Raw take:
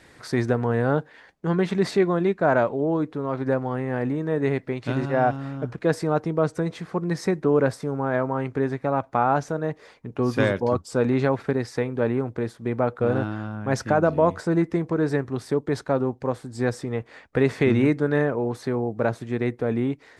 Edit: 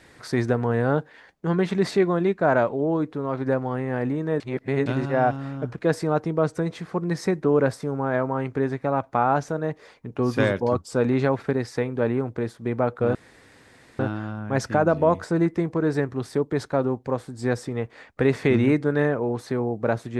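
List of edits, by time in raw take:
4.40–4.86 s: reverse
13.15 s: insert room tone 0.84 s

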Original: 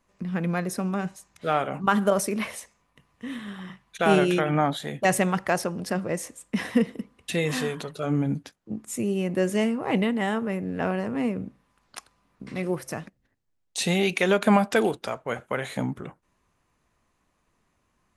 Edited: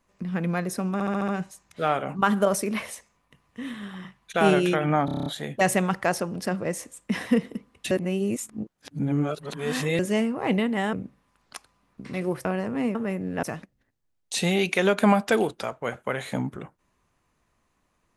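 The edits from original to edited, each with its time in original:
0.93 s: stutter 0.07 s, 6 plays
4.70 s: stutter 0.03 s, 8 plays
7.35–9.43 s: reverse
10.37–10.85 s: swap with 11.35–12.87 s

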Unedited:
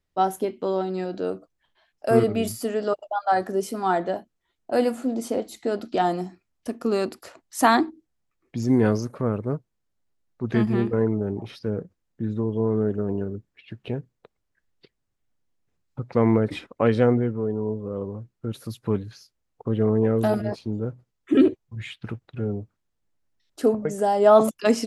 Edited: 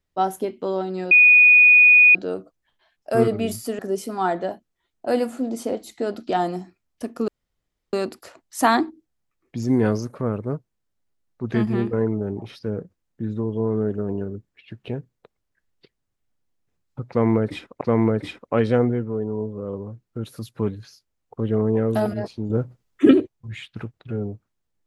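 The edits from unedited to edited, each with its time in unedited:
1.11 s: add tone 2.47 kHz -8.5 dBFS 1.04 s
2.75–3.44 s: delete
6.93 s: insert room tone 0.65 s
16.09–16.81 s: loop, 2 plays
20.78–21.39 s: gain +6.5 dB

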